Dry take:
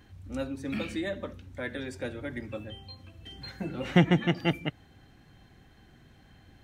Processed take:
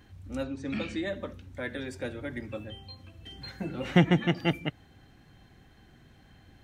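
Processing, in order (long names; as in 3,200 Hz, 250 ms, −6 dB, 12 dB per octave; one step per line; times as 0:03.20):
0:00.43–0:01.08: low-pass filter 7,500 Hz 24 dB per octave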